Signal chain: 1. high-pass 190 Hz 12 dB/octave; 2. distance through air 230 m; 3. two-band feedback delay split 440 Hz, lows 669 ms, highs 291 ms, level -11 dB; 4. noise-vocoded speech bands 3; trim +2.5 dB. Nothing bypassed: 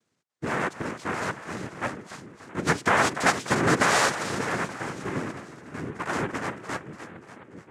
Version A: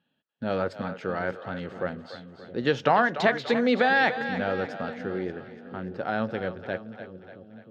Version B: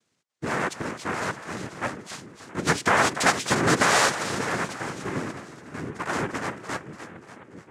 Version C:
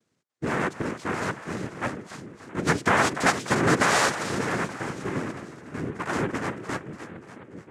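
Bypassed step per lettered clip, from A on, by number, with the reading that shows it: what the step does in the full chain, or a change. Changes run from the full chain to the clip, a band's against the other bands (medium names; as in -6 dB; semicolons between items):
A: 4, 500 Hz band +4.5 dB; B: 2, 8 kHz band +2.5 dB; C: 1, 250 Hz band +2.0 dB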